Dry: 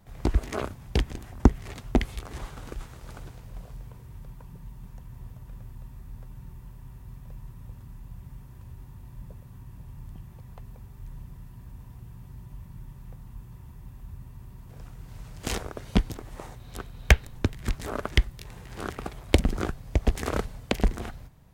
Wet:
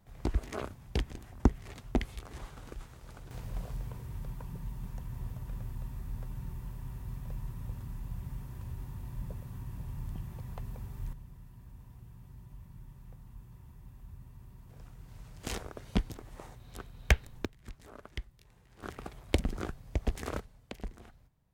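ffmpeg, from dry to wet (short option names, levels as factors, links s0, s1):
-af "asetnsamples=n=441:p=0,asendcmd='3.31 volume volume 3dB;11.13 volume volume -7dB;17.45 volume volume -18.5dB;18.83 volume volume -8dB;20.39 volume volume -17.5dB',volume=0.447"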